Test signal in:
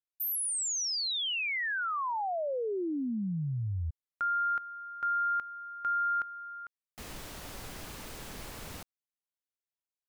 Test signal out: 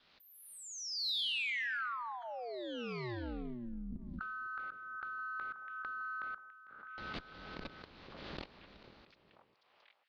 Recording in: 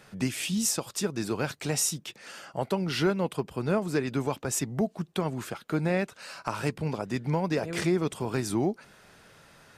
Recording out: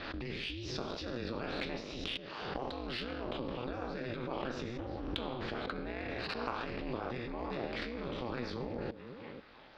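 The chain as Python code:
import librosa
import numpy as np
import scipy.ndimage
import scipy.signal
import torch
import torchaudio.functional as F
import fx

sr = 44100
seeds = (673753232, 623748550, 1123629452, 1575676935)

y = fx.spec_trails(x, sr, decay_s=0.76)
y = fx.level_steps(y, sr, step_db=20)
y = scipy.signal.sosfilt(scipy.signal.butter(2, 47.0, 'highpass', fs=sr, output='sos'), y)
y = fx.high_shelf_res(y, sr, hz=6200.0, db=-14.0, q=3.0)
y = fx.hpss(y, sr, part='harmonic', gain_db=-6)
y = fx.air_absorb(y, sr, metres=230.0)
y = fx.notch(y, sr, hz=820.0, q=12.0)
y = fx.echo_stepped(y, sr, ms=491, hz=340.0, octaves=1.4, feedback_pct=70, wet_db=-7)
y = y * np.sin(2.0 * np.pi * 120.0 * np.arange(len(y)) / sr)
y = fx.cheby_harmonics(y, sr, harmonics=(4, 5, 7), levels_db=(-38, -31, -28), full_scale_db=-27.0)
y = fx.pre_swell(y, sr, db_per_s=32.0)
y = y * 10.0 ** (8.0 / 20.0)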